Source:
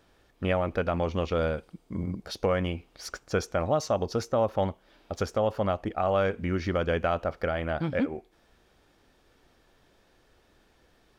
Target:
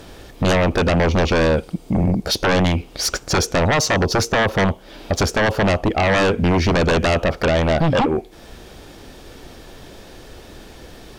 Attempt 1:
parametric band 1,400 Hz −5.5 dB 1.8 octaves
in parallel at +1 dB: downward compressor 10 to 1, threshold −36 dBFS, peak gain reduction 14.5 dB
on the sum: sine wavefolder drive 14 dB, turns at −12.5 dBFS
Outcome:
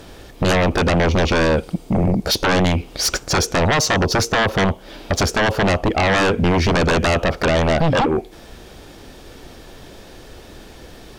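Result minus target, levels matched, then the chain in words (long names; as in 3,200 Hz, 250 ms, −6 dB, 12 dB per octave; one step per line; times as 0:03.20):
downward compressor: peak gain reduction −9.5 dB
parametric band 1,400 Hz −5.5 dB 1.8 octaves
in parallel at +1 dB: downward compressor 10 to 1, threshold −46.5 dBFS, peak gain reduction 24 dB
on the sum: sine wavefolder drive 14 dB, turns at −12.5 dBFS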